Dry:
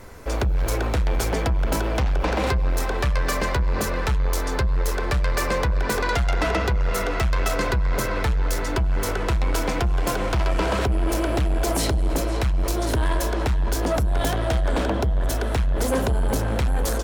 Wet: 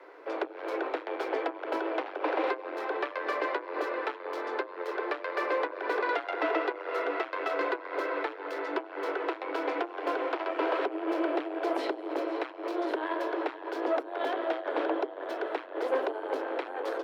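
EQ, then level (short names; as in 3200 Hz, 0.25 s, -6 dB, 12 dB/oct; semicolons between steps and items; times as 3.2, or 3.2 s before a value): steep high-pass 300 Hz 96 dB/oct; air absorption 380 m; -2.5 dB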